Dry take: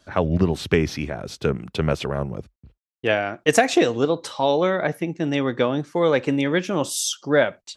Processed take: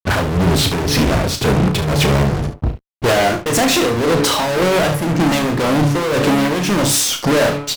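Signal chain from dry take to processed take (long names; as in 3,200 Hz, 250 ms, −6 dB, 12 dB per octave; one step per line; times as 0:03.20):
low-shelf EQ 350 Hz +8 dB
hum removal 143.7 Hz, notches 4
downward compressor, threshold −19 dBFS, peak gain reduction 11.5 dB
fuzz pedal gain 41 dB, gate −46 dBFS
amplitude tremolo 1.9 Hz, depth 55%
pitch-shifted copies added −5 semitones −13 dB
on a send: ambience of single reflections 34 ms −8 dB, 72 ms −11.5 dB
on the sum: boost into a limiter +8 dB
level −6.5 dB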